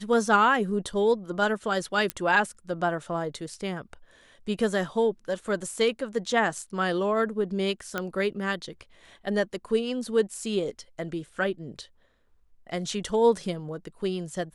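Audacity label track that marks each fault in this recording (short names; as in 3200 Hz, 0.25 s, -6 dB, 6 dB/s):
2.100000	2.100000	pop -12 dBFS
7.980000	7.980000	pop -14 dBFS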